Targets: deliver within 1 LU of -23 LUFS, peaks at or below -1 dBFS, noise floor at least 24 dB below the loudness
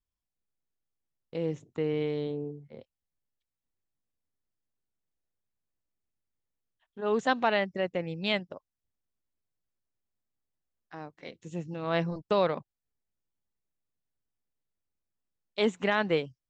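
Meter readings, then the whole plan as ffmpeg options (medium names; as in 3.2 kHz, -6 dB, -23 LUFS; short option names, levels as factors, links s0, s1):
loudness -30.5 LUFS; peak level -12.5 dBFS; loudness target -23.0 LUFS
-> -af "volume=2.37"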